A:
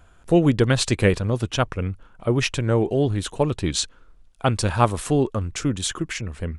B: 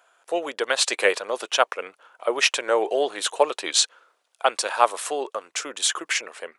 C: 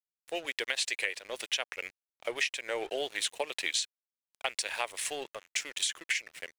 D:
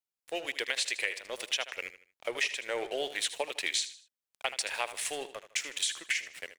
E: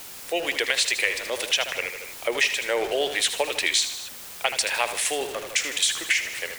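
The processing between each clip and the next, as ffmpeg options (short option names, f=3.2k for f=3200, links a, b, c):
-af "highpass=f=520:w=0.5412,highpass=f=520:w=1.3066,dynaudnorm=f=520:g=3:m=11.5dB,volume=-1dB"
-af "highshelf=f=1.6k:t=q:w=3:g=7.5,aeval=exprs='sgn(val(0))*max(abs(val(0))-0.0141,0)':c=same,acompressor=threshold=-19dB:ratio=16,volume=-8.5dB"
-af "aecho=1:1:78|156|234:0.224|0.0784|0.0274"
-af "aeval=exprs='val(0)+0.5*0.0126*sgn(val(0))':c=same,volume=7.5dB"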